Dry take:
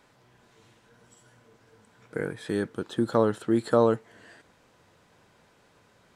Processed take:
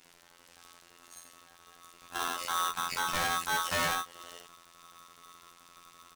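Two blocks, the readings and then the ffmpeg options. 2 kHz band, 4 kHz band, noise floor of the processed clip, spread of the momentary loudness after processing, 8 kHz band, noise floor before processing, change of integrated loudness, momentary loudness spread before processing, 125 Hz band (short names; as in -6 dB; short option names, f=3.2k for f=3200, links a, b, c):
+7.0 dB, +11.0 dB, -60 dBFS, 21 LU, +14.0 dB, -62 dBFS, -4.5 dB, 11 LU, -13.5 dB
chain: -af "aecho=1:1:50|69:0.631|0.316,afftfilt=real='hypot(re,im)*cos(PI*b)':imag='0':win_size=2048:overlap=0.75,asubboost=boost=10.5:cutoff=99,volume=28.5dB,asoftclip=hard,volume=-28.5dB,highpass=64,highshelf=f=2.9k:g=11.5,aeval=exprs='val(0)*sgn(sin(2*PI*1200*n/s))':c=same,volume=1dB"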